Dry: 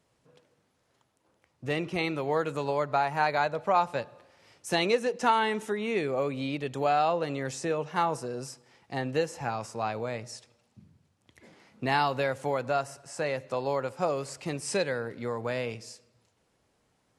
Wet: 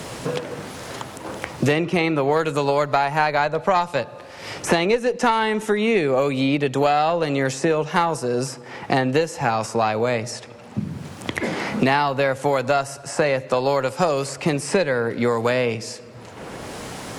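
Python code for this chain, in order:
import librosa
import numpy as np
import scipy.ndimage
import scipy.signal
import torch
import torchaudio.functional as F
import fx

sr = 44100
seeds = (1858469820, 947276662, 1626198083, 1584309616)

y = fx.cheby_harmonics(x, sr, harmonics=(2,), levels_db=(-16,), full_scale_db=-11.0)
y = fx.band_squash(y, sr, depth_pct=100)
y = y * 10.0 ** (8.5 / 20.0)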